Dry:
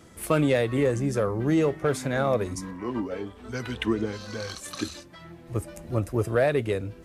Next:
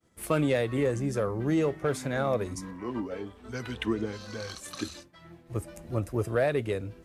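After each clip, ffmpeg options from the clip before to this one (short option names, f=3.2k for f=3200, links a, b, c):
-af "agate=range=-33dB:threshold=-42dB:ratio=3:detection=peak,volume=-3.5dB"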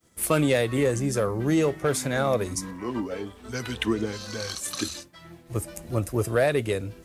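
-af "highshelf=f=4.2k:g=10,volume=3.5dB"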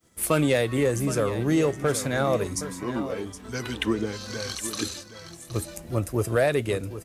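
-af "aecho=1:1:768:0.237"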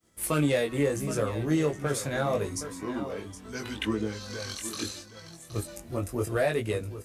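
-af "flanger=delay=18.5:depth=2.9:speed=0.75,volume=-1dB"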